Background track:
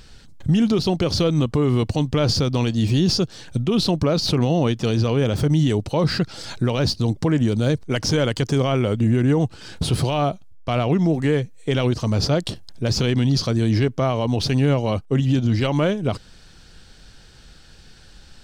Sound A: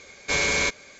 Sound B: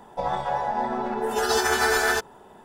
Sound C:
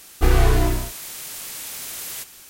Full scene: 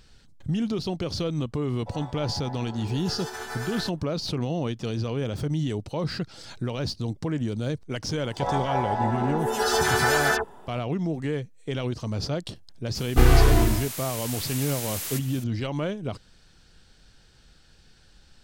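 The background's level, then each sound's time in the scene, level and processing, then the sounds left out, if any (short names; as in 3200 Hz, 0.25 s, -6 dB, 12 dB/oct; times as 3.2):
background track -9 dB
1.69 add B -14 dB
8.16 add B -0.5 dB + dispersion lows, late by 79 ms, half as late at 1900 Hz
12.95 add C -0.5 dB
not used: A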